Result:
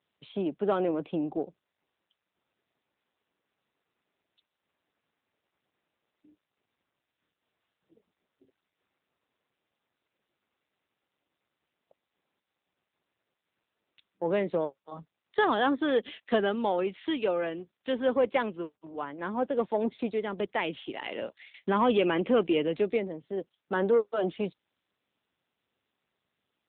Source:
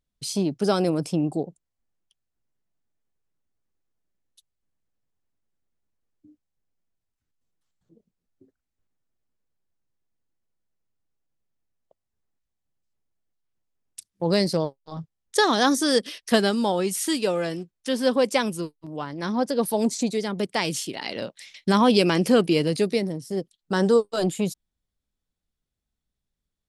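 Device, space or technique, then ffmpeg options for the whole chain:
telephone: -af "highpass=290,lowpass=3500,asoftclip=type=tanh:threshold=-12.5dB,volume=-2dB" -ar 8000 -c:a libopencore_amrnb -b:a 10200

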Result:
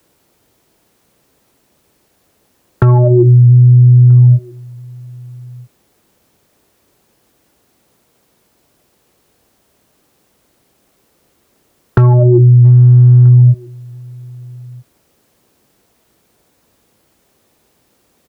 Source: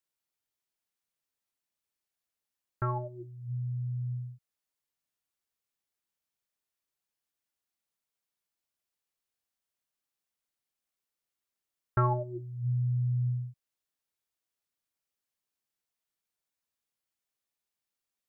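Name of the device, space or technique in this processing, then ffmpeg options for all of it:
mastering chain: -filter_complex "[0:a]highpass=40,equalizer=frequency=400:width_type=o:width=1.6:gain=4,acrossover=split=140|730[link_01][link_02][link_03];[link_01]acompressor=threshold=-32dB:ratio=4[link_04];[link_02]acompressor=threshold=-42dB:ratio=4[link_05];[link_03]acompressor=threshold=-43dB:ratio=4[link_06];[link_04][link_05][link_06]amix=inputs=3:normalize=0,acompressor=threshold=-37dB:ratio=2,asoftclip=type=tanh:threshold=-29.5dB,tiltshelf=frequency=810:gain=7,asoftclip=type=hard:threshold=-27dB,alimiter=level_in=36dB:limit=-1dB:release=50:level=0:latency=1,asplit=2[link_07][link_08];[link_08]adelay=1283,volume=-26dB,highshelf=frequency=4000:gain=-28.9[link_09];[link_07][link_09]amix=inputs=2:normalize=0,volume=-1dB"

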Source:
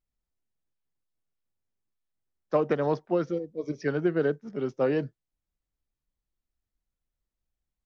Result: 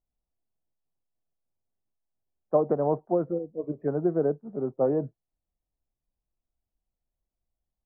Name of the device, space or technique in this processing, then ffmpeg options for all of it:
under water: -af "lowpass=frequency=1000:width=0.5412,lowpass=frequency=1000:width=1.3066,equalizer=frequency=690:width_type=o:width=0.44:gain=5.5"

